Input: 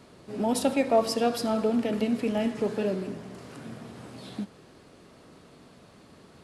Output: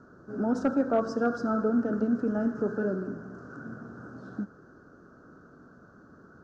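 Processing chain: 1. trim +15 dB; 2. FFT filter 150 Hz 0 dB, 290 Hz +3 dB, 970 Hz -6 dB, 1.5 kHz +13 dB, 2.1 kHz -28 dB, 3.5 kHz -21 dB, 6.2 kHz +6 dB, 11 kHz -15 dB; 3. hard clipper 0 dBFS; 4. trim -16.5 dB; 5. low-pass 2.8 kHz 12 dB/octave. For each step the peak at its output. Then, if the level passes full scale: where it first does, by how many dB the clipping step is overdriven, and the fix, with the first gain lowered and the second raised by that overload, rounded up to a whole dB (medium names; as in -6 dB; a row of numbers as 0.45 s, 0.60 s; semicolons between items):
+4.0 dBFS, +3.5 dBFS, 0.0 dBFS, -16.5 dBFS, -16.5 dBFS; step 1, 3.5 dB; step 1 +11 dB, step 4 -12.5 dB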